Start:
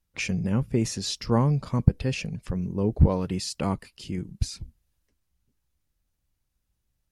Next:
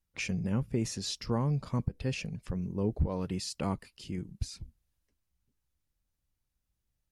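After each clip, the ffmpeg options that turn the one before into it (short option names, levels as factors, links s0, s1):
-af "alimiter=limit=0.2:level=0:latency=1:release=181,volume=0.531"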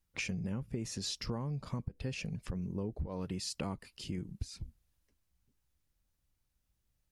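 -af "acompressor=threshold=0.0141:ratio=6,volume=1.33"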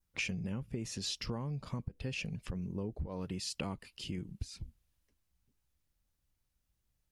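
-af "adynamicequalizer=threshold=0.00126:dfrequency=2900:dqfactor=2:tfrequency=2900:tqfactor=2:attack=5:release=100:ratio=0.375:range=3:mode=boostabove:tftype=bell,volume=0.891"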